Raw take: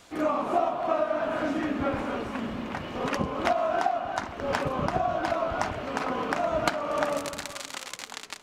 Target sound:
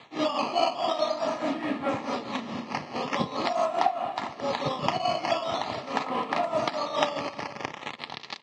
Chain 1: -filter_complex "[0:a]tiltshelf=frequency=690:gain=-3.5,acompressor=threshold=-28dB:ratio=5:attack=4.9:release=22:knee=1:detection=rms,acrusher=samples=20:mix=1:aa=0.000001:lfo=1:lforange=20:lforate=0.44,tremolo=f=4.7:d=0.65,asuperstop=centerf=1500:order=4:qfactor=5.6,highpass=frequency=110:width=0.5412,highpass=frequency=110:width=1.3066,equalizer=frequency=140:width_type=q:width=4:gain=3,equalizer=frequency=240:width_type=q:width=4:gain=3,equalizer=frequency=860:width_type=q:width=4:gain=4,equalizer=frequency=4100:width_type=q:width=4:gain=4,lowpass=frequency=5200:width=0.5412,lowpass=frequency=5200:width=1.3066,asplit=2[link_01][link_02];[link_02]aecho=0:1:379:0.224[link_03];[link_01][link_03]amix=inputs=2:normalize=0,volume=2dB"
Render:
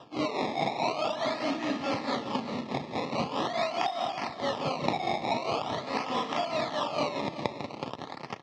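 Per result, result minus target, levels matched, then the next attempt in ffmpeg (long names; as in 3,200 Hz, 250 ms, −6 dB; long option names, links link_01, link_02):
downward compressor: peak gain reduction +11.5 dB; sample-and-hold swept by an LFO: distortion +10 dB; echo-to-direct +7.5 dB
-filter_complex "[0:a]tiltshelf=frequency=690:gain=-3.5,acrusher=samples=20:mix=1:aa=0.000001:lfo=1:lforange=20:lforate=0.44,tremolo=f=4.7:d=0.65,asuperstop=centerf=1500:order=4:qfactor=5.6,highpass=frequency=110:width=0.5412,highpass=frequency=110:width=1.3066,equalizer=frequency=140:width_type=q:width=4:gain=3,equalizer=frequency=240:width_type=q:width=4:gain=3,equalizer=frequency=860:width_type=q:width=4:gain=4,equalizer=frequency=4100:width_type=q:width=4:gain=4,lowpass=frequency=5200:width=0.5412,lowpass=frequency=5200:width=1.3066,asplit=2[link_01][link_02];[link_02]aecho=0:1:379:0.224[link_03];[link_01][link_03]amix=inputs=2:normalize=0,volume=2dB"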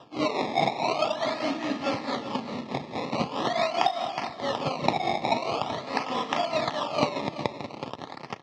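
sample-and-hold swept by an LFO: distortion +11 dB; echo-to-direct +7.5 dB
-filter_complex "[0:a]tiltshelf=frequency=690:gain=-3.5,acrusher=samples=8:mix=1:aa=0.000001:lfo=1:lforange=8:lforate=0.44,tremolo=f=4.7:d=0.65,asuperstop=centerf=1500:order=4:qfactor=5.6,highpass=frequency=110:width=0.5412,highpass=frequency=110:width=1.3066,equalizer=frequency=140:width_type=q:width=4:gain=3,equalizer=frequency=240:width_type=q:width=4:gain=3,equalizer=frequency=860:width_type=q:width=4:gain=4,equalizer=frequency=4100:width_type=q:width=4:gain=4,lowpass=frequency=5200:width=0.5412,lowpass=frequency=5200:width=1.3066,asplit=2[link_01][link_02];[link_02]aecho=0:1:379:0.224[link_03];[link_01][link_03]amix=inputs=2:normalize=0,volume=2dB"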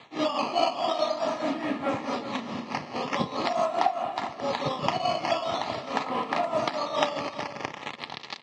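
echo-to-direct +7.5 dB
-filter_complex "[0:a]tiltshelf=frequency=690:gain=-3.5,acrusher=samples=8:mix=1:aa=0.000001:lfo=1:lforange=8:lforate=0.44,tremolo=f=4.7:d=0.65,asuperstop=centerf=1500:order=4:qfactor=5.6,highpass=frequency=110:width=0.5412,highpass=frequency=110:width=1.3066,equalizer=frequency=140:width_type=q:width=4:gain=3,equalizer=frequency=240:width_type=q:width=4:gain=3,equalizer=frequency=860:width_type=q:width=4:gain=4,equalizer=frequency=4100:width_type=q:width=4:gain=4,lowpass=frequency=5200:width=0.5412,lowpass=frequency=5200:width=1.3066,asplit=2[link_01][link_02];[link_02]aecho=0:1:379:0.0944[link_03];[link_01][link_03]amix=inputs=2:normalize=0,volume=2dB"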